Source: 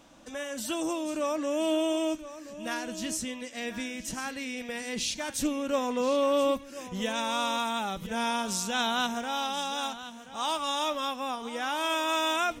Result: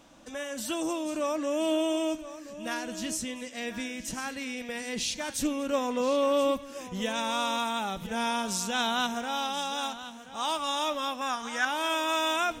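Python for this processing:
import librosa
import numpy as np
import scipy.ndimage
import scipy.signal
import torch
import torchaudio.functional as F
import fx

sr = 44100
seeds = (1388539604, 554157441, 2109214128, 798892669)

y = fx.graphic_eq_15(x, sr, hz=(400, 1600, 6300), db=(-9, 12, 10), at=(11.21, 11.65))
y = y + 10.0 ** (-21.0 / 20.0) * np.pad(y, (int(240 * sr / 1000.0), 0))[:len(y)]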